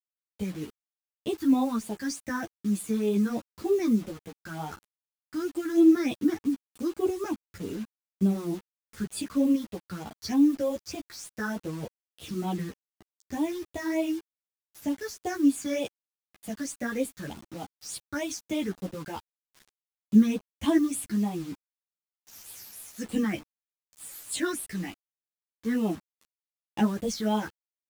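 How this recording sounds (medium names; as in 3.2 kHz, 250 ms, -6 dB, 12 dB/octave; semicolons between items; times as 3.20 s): phasing stages 6, 3.3 Hz, lowest notch 690–1700 Hz; a quantiser's noise floor 8-bit, dither none; a shimmering, thickened sound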